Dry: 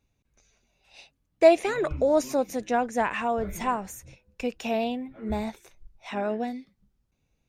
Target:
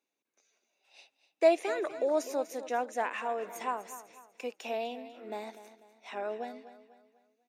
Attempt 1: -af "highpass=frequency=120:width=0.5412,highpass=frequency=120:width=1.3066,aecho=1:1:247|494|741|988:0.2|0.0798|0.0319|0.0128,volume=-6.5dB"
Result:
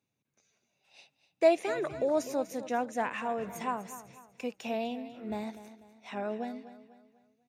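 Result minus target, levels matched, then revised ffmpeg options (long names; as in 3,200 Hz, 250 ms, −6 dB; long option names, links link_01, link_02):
125 Hz band +14.0 dB
-af "highpass=frequency=300:width=0.5412,highpass=frequency=300:width=1.3066,aecho=1:1:247|494|741|988:0.2|0.0798|0.0319|0.0128,volume=-6.5dB"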